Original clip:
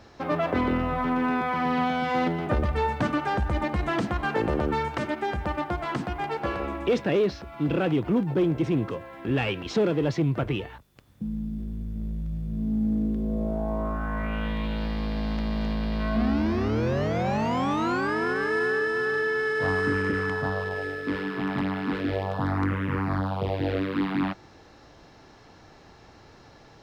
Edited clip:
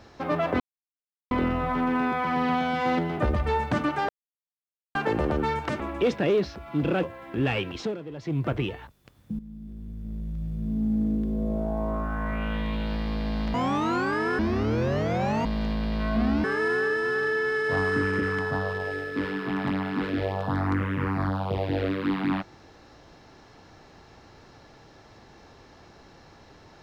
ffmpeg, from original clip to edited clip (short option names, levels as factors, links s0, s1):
-filter_complex "[0:a]asplit=13[s0][s1][s2][s3][s4][s5][s6][s7][s8][s9][s10][s11][s12];[s0]atrim=end=0.6,asetpts=PTS-STARTPTS,afade=t=out:st=0.596:d=0.004:c=hsin,apad=pad_dur=0.71[s13];[s1]atrim=start=0.6:end=3.38,asetpts=PTS-STARTPTS,afade=t=in:d=0.004:c=hsin,afade=t=out:st=2.776:d=0.004:c=hsin[s14];[s2]atrim=start=3.38:end=4.24,asetpts=PTS-STARTPTS,volume=0[s15];[s3]atrim=start=4.24:end=5.092,asetpts=PTS-STARTPTS,afade=t=in:d=0.004:c=hsin[s16];[s4]atrim=start=6.658:end=7.892[s17];[s5]atrim=start=8.938:end=9.88,asetpts=PTS-STARTPTS,afade=t=out:st=0.682:d=0.26:silence=0.211349[s18];[s6]atrim=start=9.88:end=10.1,asetpts=PTS-STARTPTS,volume=0.211[s19];[s7]atrim=start=10.1:end=11.3,asetpts=PTS-STARTPTS,afade=t=in:d=0.26:silence=0.211349,afade=t=out:st=1.196:d=0.004:c=hsin:silence=0.211349[s20];[s8]atrim=start=11.3:end=15.452,asetpts=PTS-STARTPTS,afade=t=in:d=1.14:silence=0.211349[s21];[s9]atrim=start=17.498:end=18.352[s22];[s10]atrim=start=16.438:end=17.502[s23];[s11]atrim=start=15.448:end=16.442[s24];[s12]atrim=start=18.348[s25];[s13][s14][s15][s16]concat=n=4:v=0:a=1[s26];[s26][s17]acrossfade=d=0.004:c1=hsin:c2=hsin[s27];[s18][s19][s20][s21]concat=n=4:v=0:a=1[s28];[s27][s28]acrossfade=d=0.004:c1=hsin:c2=hsin[s29];[s29][s22]acrossfade=d=0.004:c1=hsin:c2=hsin[s30];[s30][s23]acrossfade=d=0.004:c1=hsin:c2=hsin[s31];[s31][s24]acrossfade=d=0.004:c1=hsin:c2=hsin[s32];[s32][s25]acrossfade=d=0.004:c1=hsin:c2=hsin"